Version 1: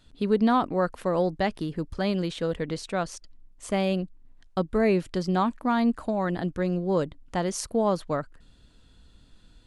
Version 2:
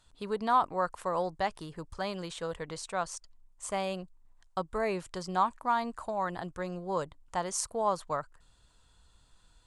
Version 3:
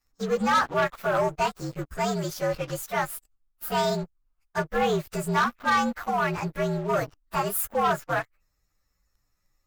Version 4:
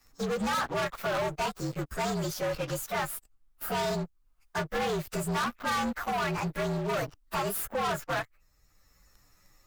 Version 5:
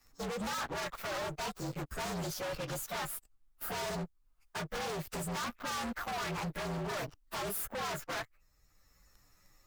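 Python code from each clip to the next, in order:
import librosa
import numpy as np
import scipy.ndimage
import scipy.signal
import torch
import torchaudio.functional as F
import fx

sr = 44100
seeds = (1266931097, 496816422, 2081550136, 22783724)

y1 = fx.graphic_eq(x, sr, hz=(250, 1000, 8000), db=(-9, 10, 11))
y1 = y1 * 10.0 ** (-8.0 / 20.0)
y2 = fx.partial_stretch(y1, sr, pct=117)
y2 = fx.leveller(y2, sr, passes=3)
y3 = 10.0 ** (-28.5 / 20.0) * np.tanh(y2 / 10.0 ** (-28.5 / 20.0))
y3 = fx.band_squash(y3, sr, depth_pct=40)
y3 = y3 * 10.0 ** (1.5 / 20.0)
y4 = 10.0 ** (-29.0 / 20.0) * (np.abs((y3 / 10.0 ** (-29.0 / 20.0) + 3.0) % 4.0 - 2.0) - 1.0)
y4 = y4 * 10.0 ** (-3.0 / 20.0)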